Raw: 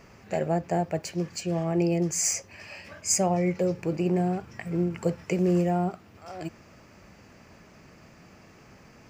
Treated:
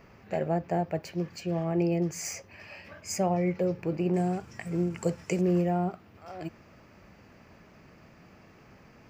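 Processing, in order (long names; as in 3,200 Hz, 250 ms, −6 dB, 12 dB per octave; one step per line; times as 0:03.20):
parametric band 8,000 Hz −11.5 dB 1.2 octaves, from 0:04.14 +6 dB, from 0:05.41 −9 dB
level −2 dB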